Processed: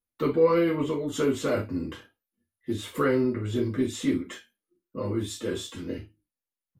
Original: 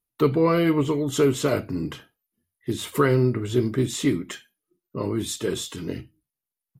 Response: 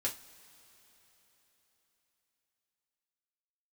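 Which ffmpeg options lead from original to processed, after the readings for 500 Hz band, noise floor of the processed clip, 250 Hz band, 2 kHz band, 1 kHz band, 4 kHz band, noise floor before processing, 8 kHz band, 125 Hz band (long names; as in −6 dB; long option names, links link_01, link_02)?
−2.5 dB, below −85 dBFS, −3.5 dB, −4.0 dB, −4.0 dB, −5.5 dB, below −85 dBFS, −7.5 dB, −8.0 dB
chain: -filter_complex "[0:a]highshelf=frequency=4900:gain=-6[link_01];[1:a]atrim=start_sample=2205,atrim=end_sample=3528[link_02];[link_01][link_02]afir=irnorm=-1:irlink=0,volume=-5.5dB"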